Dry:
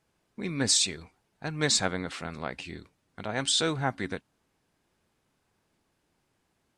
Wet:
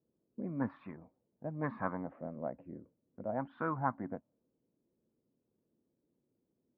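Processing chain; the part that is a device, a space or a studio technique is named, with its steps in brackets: envelope filter bass rig (envelope low-pass 430–1100 Hz up, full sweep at -23 dBFS; speaker cabinet 68–2100 Hz, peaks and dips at 80 Hz -10 dB, 240 Hz +5 dB, 420 Hz -10 dB, 760 Hz -6 dB); 0.88–2.44 notch 1400 Hz, Q 10; gain -7 dB

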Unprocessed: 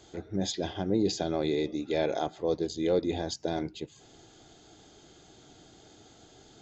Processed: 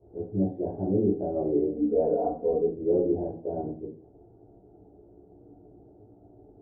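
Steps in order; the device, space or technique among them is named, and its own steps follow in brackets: next room (LPF 620 Hz 24 dB/oct; reverb RT60 0.45 s, pre-delay 12 ms, DRR -10 dB); 1.76–2.73 comb 4.2 ms, depth 92%; gain -6 dB

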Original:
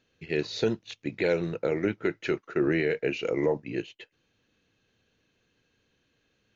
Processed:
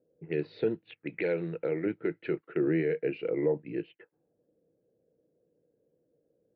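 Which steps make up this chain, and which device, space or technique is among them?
1.05–1.86 tilt shelf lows -3.5 dB, about 660 Hz; envelope filter bass rig (envelope low-pass 550–4800 Hz up, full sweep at -29.5 dBFS; speaker cabinet 64–2400 Hz, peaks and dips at 85 Hz -7 dB, 160 Hz +9 dB, 320 Hz +8 dB, 470 Hz +7 dB, 1100 Hz -5 dB); gain -8.5 dB

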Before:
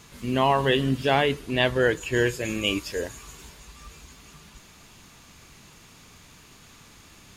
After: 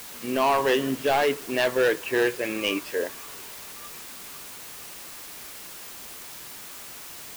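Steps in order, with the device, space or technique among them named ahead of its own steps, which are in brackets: aircraft radio (BPF 330–2500 Hz; hard clip -20 dBFS, distortion -10 dB; white noise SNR 13 dB); gain +3.5 dB

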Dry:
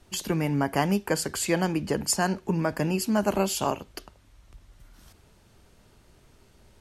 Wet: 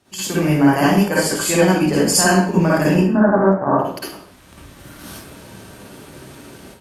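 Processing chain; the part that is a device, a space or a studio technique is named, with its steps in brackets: 2.94–3.79 steep low-pass 1900 Hz 96 dB/oct; far-field microphone of a smart speaker (reverb RT60 0.50 s, pre-delay 48 ms, DRR -8 dB; HPF 120 Hz 12 dB/oct; AGC gain up to 15 dB; gain -1 dB; Opus 48 kbps 48000 Hz)

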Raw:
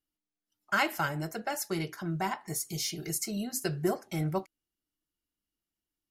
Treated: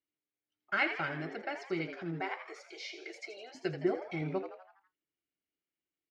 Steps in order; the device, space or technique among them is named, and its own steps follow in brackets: 2.2–3.55 steep high-pass 390 Hz 36 dB/oct; frequency-shifting delay pedal into a guitar cabinet (frequency-shifting echo 82 ms, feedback 51%, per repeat +120 Hz, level -9.5 dB; speaker cabinet 99–4000 Hz, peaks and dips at 130 Hz -5 dB, 210 Hz -6 dB, 360 Hz +4 dB, 1000 Hz -8 dB, 2200 Hz +7 dB, 3300 Hz -3 dB); gain -4 dB

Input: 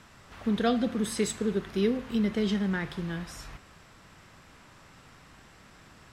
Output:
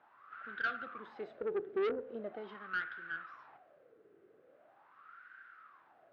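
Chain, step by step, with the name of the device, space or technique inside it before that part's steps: wah-wah guitar rig (wah 0.42 Hz 410–1500 Hz, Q 9.8; tube stage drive 40 dB, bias 0.4; speaker cabinet 110–4100 Hz, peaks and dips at 190 Hz -5 dB, 340 Hz +4 dB, 950 Hz -9 dB, 1500 Hz +5 dB); gain +9 dB

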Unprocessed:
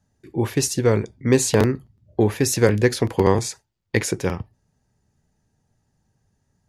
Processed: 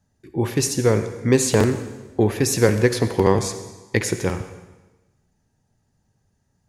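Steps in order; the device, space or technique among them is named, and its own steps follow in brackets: saturated reverb return (on a send at -9 dB: reverb RT60 1.1 s, pre-delay 57 ms + soft clip -12 dBFS, distortion -19 dB)

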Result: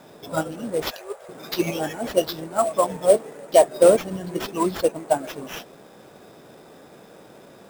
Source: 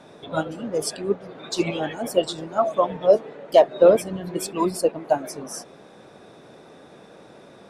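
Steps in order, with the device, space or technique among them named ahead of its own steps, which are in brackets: 0.82–1.29 steep high-pass 490 Hz 36 dB/oct; early companding sampler (sample-rate reducer 8700 Hz, jitter 0%; companded quantiser 6-bit)

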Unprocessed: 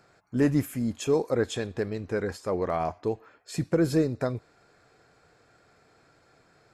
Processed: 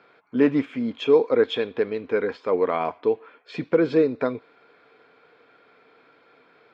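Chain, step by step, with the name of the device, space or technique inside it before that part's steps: kitchen radio (speaker cabinet 210–4100 Hz, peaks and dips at 260 Hz +7 dB, 460 Hz +9 dB, 1000 Hz +7 dB, 1400 Hz +5 dB, 2300 Hz +9 dB, 3300 Hz +9 dB)

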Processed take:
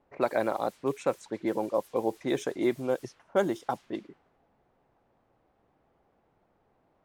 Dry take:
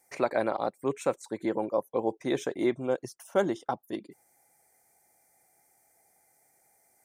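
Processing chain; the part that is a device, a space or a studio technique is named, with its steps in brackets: cassette deck with a dynamic noise filter (white noise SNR 24 dB; low-pass opened by the level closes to 640 Hz, open at -25.5 dBFS)

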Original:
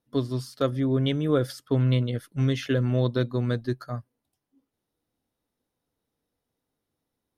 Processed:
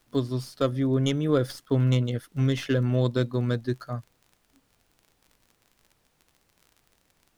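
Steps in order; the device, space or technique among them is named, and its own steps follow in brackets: record under a worn stylus (tracing distortion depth 0.056 ms; crackle 40/s -42 dBFS; pink noise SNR 41 dB)

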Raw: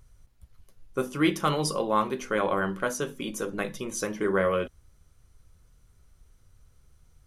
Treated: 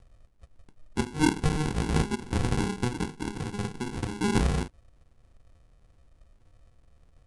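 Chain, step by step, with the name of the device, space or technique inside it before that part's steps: crushed at another speed (playback speed 2×; sample-and-hold 36×; playback speed 0.5×)

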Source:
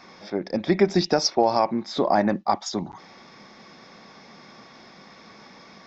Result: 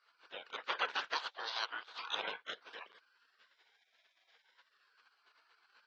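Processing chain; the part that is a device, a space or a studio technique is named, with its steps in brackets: spectral gate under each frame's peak -25 dB weak; voice changer toy (ring modulator with a swept carrier 1200 Hz, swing 45%, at 0.37 Hz; speaker cabinet 450–3900 Hz, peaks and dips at 470 Hz +7 dB, 1000 Hz +4 dB, 1500 Hz +9 dB); 1.15–2.15 graphic EQ 125/250/500/1000/2000/4000 Hz -12/-4/-5/+7/-7/+10 dB; gain +3.5 dB

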